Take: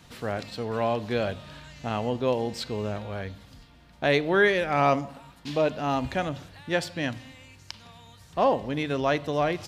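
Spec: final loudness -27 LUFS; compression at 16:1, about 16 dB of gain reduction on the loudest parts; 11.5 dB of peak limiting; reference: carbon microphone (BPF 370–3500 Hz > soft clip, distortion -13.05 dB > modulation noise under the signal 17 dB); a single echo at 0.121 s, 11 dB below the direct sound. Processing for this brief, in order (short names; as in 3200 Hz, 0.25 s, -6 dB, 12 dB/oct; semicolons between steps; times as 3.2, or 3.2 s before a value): compressor 16:1, threshold -33 dBFS; limiter -29.5 dBFS; BPF 370–3500 Hz; echo 0.121 s -11 dB; soft clip -37.5 dBFS; modulation noise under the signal 17 dB; gain +18.5 dB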